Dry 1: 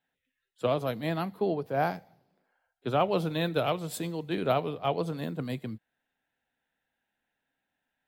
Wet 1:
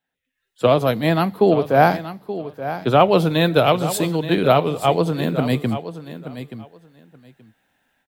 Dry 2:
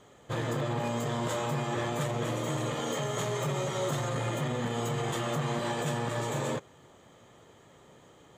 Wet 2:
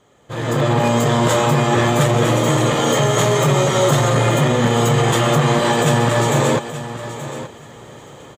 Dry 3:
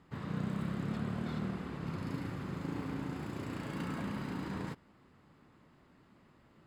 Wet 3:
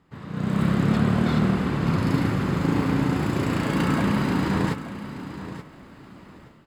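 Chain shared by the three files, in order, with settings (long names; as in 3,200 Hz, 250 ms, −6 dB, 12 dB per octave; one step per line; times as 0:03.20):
automatic gain control gain up to 16 dB
on a send: repeating echo 877 ms, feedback 17%, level −12.5 dB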